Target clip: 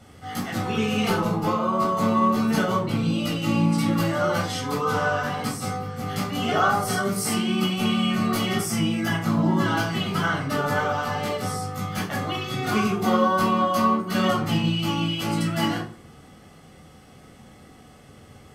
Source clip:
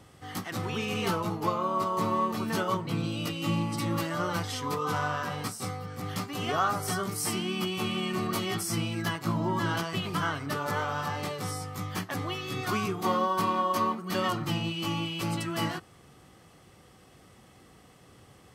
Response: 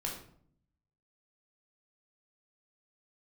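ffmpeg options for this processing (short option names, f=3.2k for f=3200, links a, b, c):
-filter_complex "[0:a]asettb=1/sr,asplit=3[a][b][c];[a]atrim=end=8.604[d];[b]atrim=start=8.6:end=9.25,asetpts=PTS-STARTPTS,afade=t=in:d=0.004:c=qsin,afade=t=out:st=0.646:d=0.004:c=qsin,bandreject=f=4.2k:w=6.3[e];[c]atrim=start=9.246[f];[d][e]acrossfade=d=0.004:c1=hsin:c2=qsin[g];[g][f]acrossfade=d=0.004:c1=qsin:c2=hsin[h];[1:a]atrim=start_sample=2205,asetrate=66150,aresample=44100[i];[h][i]afir=irnorm=-1:irlink=0,volume=7dB"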